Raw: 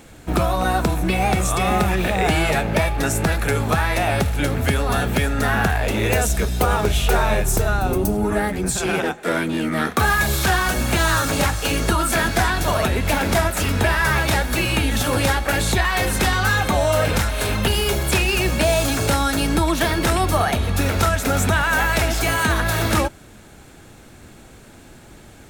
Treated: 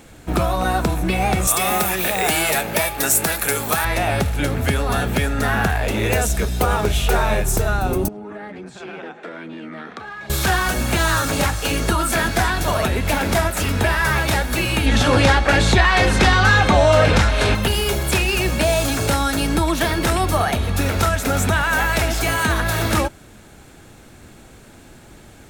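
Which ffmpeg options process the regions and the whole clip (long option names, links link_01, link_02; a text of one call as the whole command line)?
ffmpeg -i in.wav -filter_complex "[0:a]asettb=1/sr,asplit=3[link_01][link_02][link_03];[link_01]atrim=end=1.474[link_04];[link_02]atrim=start=1.47:end=3.85,asetpts=PTS-STARTPTS,afade=type=in:duration=0.004:curve=qsin,afade=type=out:start_time=2.376:duration=0.004:curve=qsin,aemphasis=mode=production:type=bsi,volume=9.5dB,asoftclip=hard,volume=-9.5dB[link_05];[link_03]atrim=start=3.846[link_06];[link_04][link_05]acrossfade=duration=0.004:curve1=hsin:curve2=qsin[link_07];[link_07][link_06]acrossfade=duration=0.004:curve1=qsin:curve2=hsin,asettb=1/sr,asplit=3[link_08][link_09][link_10];[link_08]atrim=end=8.084[link_11];[link_09]atrim=start=8.08:end=10.3,asetpts=PTS-STARTPTS,afade=type=in:duration=0.004:curve=qsin,afade=type=out:start_time=2.216:duration=0.004:curve=qsin,acompressor=threshold=-28dB:ratio=16:attack=3.2:release=140:knee=1:detection=peak,highpass=180,lowpass=3400[link_12];[link_10]atrim=start=10.296[link_13];[link_11][link_12]acrossfade=duration=0.004:curve1=hsin:curve2=qsin[link_14];[link_14][link_13]acrossfade=duration=0.004:curve1=qsin:curve2=hsin,asettb=1/sr,asplit=3[link_15][link_16][link_17];[link_15]atrim=end=14.864[link_18];[link_16]atrim=start=14.86:end=17.55,asetpts=PTS-STARTPTS,afade=type=in:duration=0.004:curve=qsin,afade=type=out:start_time=2.686:duration=0.004:curve=qsin,lowpass=5700,acontrast=39[link_19];[link_17]atrim=start=17.546[link_20];[link_18][link_19]acrossfade=duration=0.004:curve1=hsin:curve2=qsin[link_21];[link_21][link_20]acrossfade=duration=0.004:curve1=qsin:curve2=hsin" out.wav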